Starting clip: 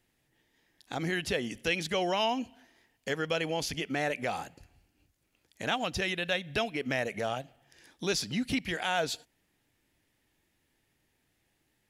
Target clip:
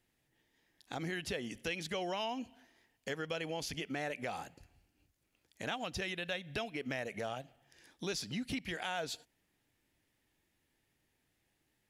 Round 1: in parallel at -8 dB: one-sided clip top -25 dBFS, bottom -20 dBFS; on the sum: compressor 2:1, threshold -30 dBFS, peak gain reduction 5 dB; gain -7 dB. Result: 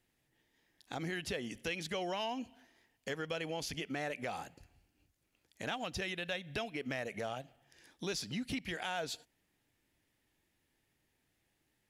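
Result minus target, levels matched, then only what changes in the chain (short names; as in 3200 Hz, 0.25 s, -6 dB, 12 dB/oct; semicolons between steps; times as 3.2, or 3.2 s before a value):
one-sided clip: distortion +14 dB
change: one-sided clip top -14 dBFS, bottom -20 dBFS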